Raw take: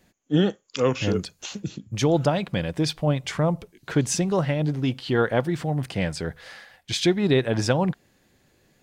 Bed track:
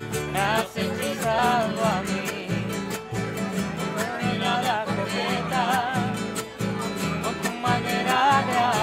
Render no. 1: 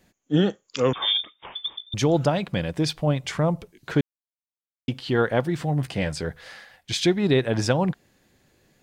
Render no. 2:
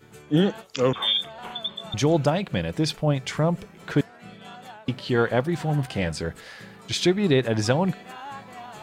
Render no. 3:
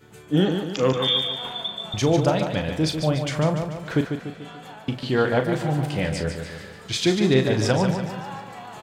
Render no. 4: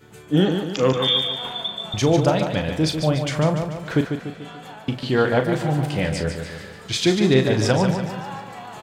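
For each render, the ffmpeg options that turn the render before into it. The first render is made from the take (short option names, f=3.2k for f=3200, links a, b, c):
-filter_complex "[0:a]asettb=1/sr,asplit=3[a][b][c];[a]atrim=end=0.934[d];[b]atrim=start=0.93:end=1.94,asetpts=PTS-STARTPTS,afade=t=in:d=0.004:c=qsin,afade=t=out:st=1.006:d=0.004:c=qsin,lowpass=f=3.1k:t=q:w=0.5098,lowpass=f=3.1k:t=q:w=0.6013,lowpass=f=3.1k:t=q:w=0.9,lowpass=f=3.1k:t=q:w=2.563,afreqshift=-3700[e];[c]atrim=start=1.936[f];[d][e]acrossfade=d=0.004:c1=hsin:c2=qsin[g];[g][f]acrossfade=d=0.004:c1=qsin:c2=hsin,asettb=1/sr,asplit=3[h][i][j];[h]atrim=end=5.594[k];[i]atrim=start=5.59:end=6.29,asetpts=PTS-STARTPTS,afade=t=in:d=0.004:c=qsin,afade=t=out:st=0.696:d=0.004:c=qsin,asplit=2[l][m];[m]adelay=14,volume=-10dB[n];[l][n]amix=inputs=2:normalize=0,atrim=end_sample=30870[o];[j]atrim=start=6.286[p];[k][o]acrossfade=d=0.004:c1=hsin:c2=qsin[q];[q][p]acrossfade=d=0.004:c1=qsin:c2=hsin,asplit=3[r][s][t];[r]atrim=end=4.01,asetpts=PTS-STARTPTS,afade=t=out:st=4.006:d=0.004:c=hsin[u];[s]atrim=start=4.01:end=4.88,asetpts=PTS-STARTPTS,volume=0[v];[t]atrim=start=4.88,asetpts=PTS-STARTPTS,afade=t=in:d=0.004:c=hsin[w];[u][v][w]concat=n=3:v=0:a=1"
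-filter_complex "[1:a]volume=-19dB[a];[0:a][a]amix=inputs=2:normalize=0"
-filter_complex "[0:a]asplit=2[a][b];[b]adelay=38,volume=-9dB[c];[a][c]amix=inputs=2:normalize=0,aecho=1:1:146|292|438|584|730|876:0.447|0.228|0.116|0.0593|0.0302|0.0154"
-af "volume=2dB"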